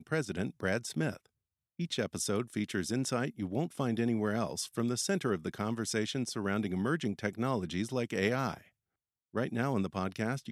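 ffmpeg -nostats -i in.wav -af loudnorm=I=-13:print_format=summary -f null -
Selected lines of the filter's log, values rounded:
Input Integrated:    -34.0 LUFS
Input True Peak:     -15.2 dBTP
Input LRA:             2.0 LU
Input Threshold:     -44.2 LUFS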